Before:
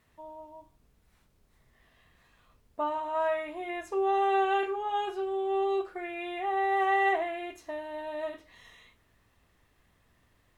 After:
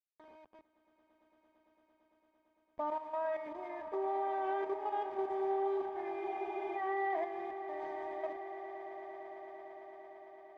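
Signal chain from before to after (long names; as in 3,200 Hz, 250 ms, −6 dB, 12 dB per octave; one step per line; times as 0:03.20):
hold until the input has moved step −39.5 dBFS
low-pass filter 2,000 Hz 12 dB per octave
parametric band 120 Hz −11 dB 0.78 octaves
output level in coarse steps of 11 dB
notch comb filter 1,400 Hz
echo that builds up and dies away 113 ms, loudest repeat 8, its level −17 dB
frozen spectrum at 0:06.22, 0.55 s
level −2 dB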